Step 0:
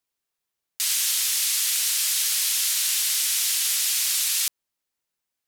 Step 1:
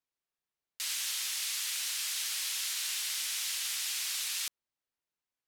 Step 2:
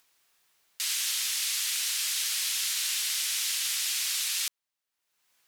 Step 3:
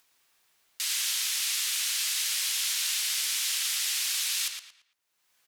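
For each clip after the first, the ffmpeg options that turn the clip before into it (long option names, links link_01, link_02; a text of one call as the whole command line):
ffmpeg -i in.wav -af "highshelf=frequency=5900:gain=-9.5,volume=-6dB" out.wav
ffmpeg -i in.wav -af "acompressor=mode=upward:threshold=-57dB:ratio=2.5,tiltshelf=frequency=650:gain=-5.5,aeval=exprs='0.15*(cos(1*acos(clip(val(0)/0.15,-1,1)))-cos(1*PI/2))+0.00168*(cos(3*acos(clip(val(0)/0.15,-1,1)))-cos(3*PI/2))':channel_layout=same" out.wav
ffmpeg -i in.wav -filter_complex "[0:a]asplit=2[link_01][link_02];[link_02]adelay=113,lowpass=frequency=4800:poles=1,volume=-5dB,asplit=2[link_03][link_04];[link_04]adelay=113,lowpass=frequency=4800:poles=1,volume=0.34,asplit=2[link_05][link_06];[link_06]adelay=113,lowpass=frequency=4800:poles=1,volume=0.34,asplit=2[link_07][link_08];[link_08]adelay=113,lowpass=frequency=4800:poles=1,volume=0.34[link_09];[link_01][link_03][link_05][link_07][link_09]amix=inputs=5:normalize=0" out.wav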